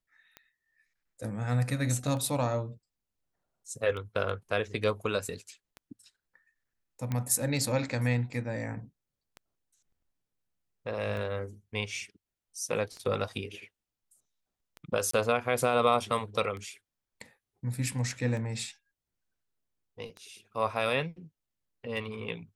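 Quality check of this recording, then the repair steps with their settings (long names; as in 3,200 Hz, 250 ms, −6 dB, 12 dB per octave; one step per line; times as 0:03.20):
scratch tick 33 1/3 rpm −28 dBFS
0:07.12: click −19 dBFS
0:15.11–0:15.13: drop-out 24 ms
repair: click removal
repair the gap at 0:15.11, 24 ms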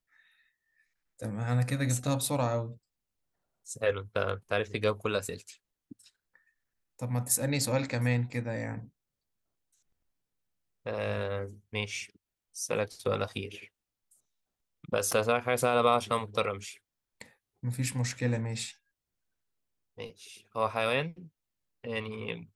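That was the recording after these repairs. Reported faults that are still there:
none of them is left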